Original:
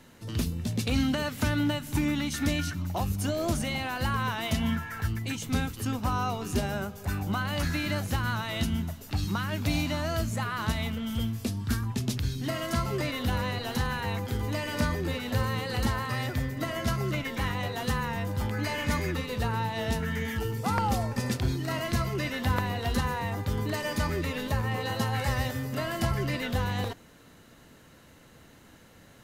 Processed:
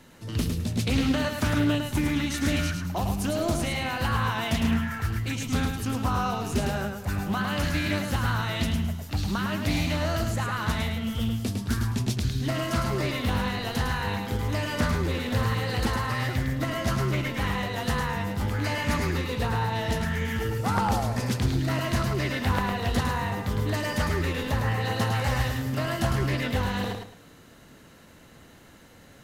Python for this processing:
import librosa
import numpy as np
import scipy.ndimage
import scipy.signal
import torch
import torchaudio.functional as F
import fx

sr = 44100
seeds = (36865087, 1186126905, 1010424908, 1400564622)

p1 = x + fx.echo_feedback(x, sr, ms=106, feedback_pct=27, wet_db=-5, dry=0)
p2 = fx.doppler_dist(p1, sr, depth_ms=0.34)
y = F.gain(torch.from_numpy(p2), 1.5).numpy()